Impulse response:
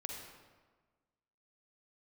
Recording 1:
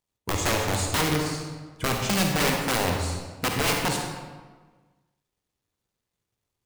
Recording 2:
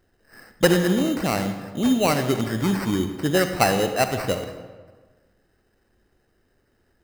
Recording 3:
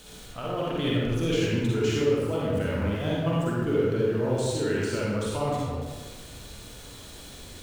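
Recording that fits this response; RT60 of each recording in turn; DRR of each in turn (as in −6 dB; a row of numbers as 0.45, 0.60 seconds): 1; 1.4, 1.4, 1.4 seconds; 1.0, 7.5, −6.0 decibels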